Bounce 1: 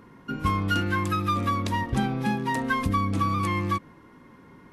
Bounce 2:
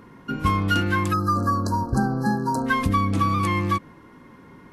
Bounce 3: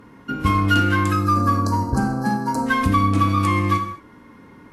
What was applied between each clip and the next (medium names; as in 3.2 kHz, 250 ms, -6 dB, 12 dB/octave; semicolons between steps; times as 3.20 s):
spectral selection erased 1.13–2.66 s, 1.7–4 kHz; trim +3.5 dB
Chebyshev shaper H 7 -34 dB, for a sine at -9 dBFS; gated-style reverb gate 250 ms falling, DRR 4.5 dB; trim +1.5 dB